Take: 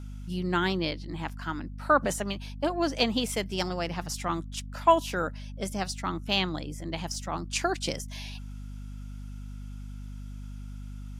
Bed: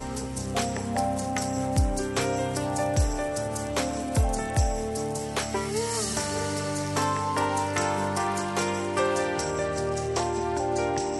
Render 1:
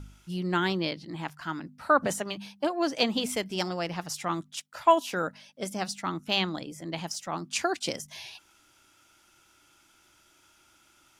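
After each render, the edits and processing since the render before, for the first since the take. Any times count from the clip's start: de-hum 50 Hz, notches 5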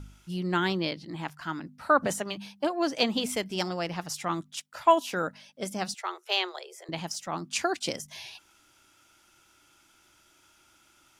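5.94–6.89 s: Chebyshev high-pass 360 Hz, order 10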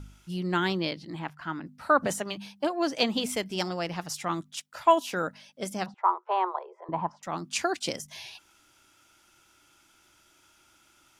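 1.19–1.66 s: tone controls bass 0 dB, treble -12 dB; 5.86–7.23 s: resonant low-pass 1 kHz, resonance Q 8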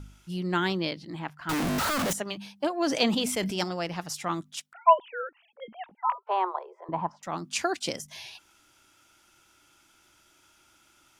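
1.49–2.13 s: one-bit comparator; 2.84–3.64 s: decay stretcher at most 38 dB/s; 4.73–6.27 s: formants replaced by sine waves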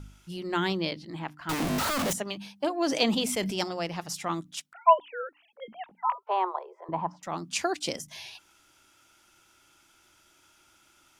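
hum notches 60/120/180/240/300 Hz; dynamic bell 1.5 kHz, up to -3 dB, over -46 dBFS, Q 2.7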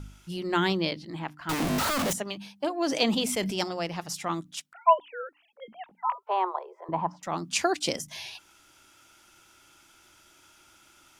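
gain riding within 4 dB 2 s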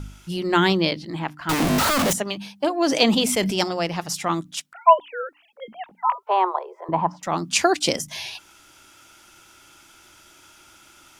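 trim +7 dB; peak limiter -3 dBFS, peak gain reduction 1 dB

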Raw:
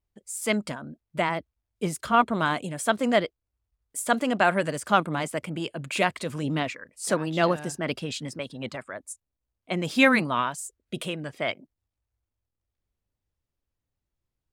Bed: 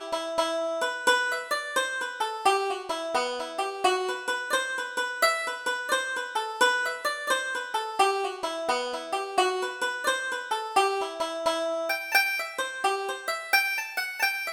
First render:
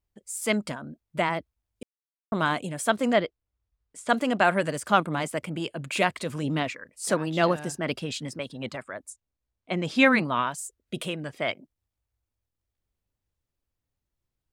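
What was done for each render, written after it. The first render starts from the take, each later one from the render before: 1.83–2.32 s: mute; 3.13–4.09 s: distance through air 98 m; 9.10–10.47 s: distance through air 57 m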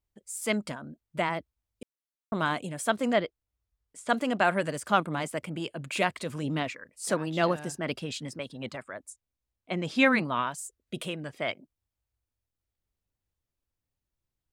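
trim -3 dB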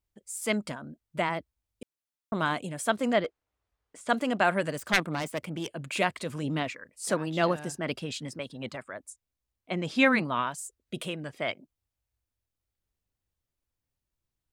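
3.24–4.01 s: overdrive pedal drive 21 dB, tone 1 kHz, clips at -20.5 dBFS; 4.78–5.72 s: self-modulated delay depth 0.37 ms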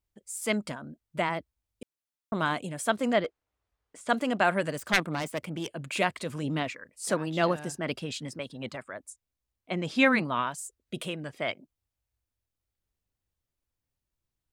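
no audible change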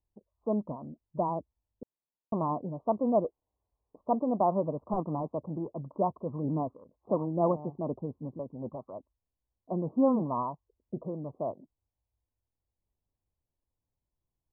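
steep low-pass 1.1 kHz 96 dB/octave

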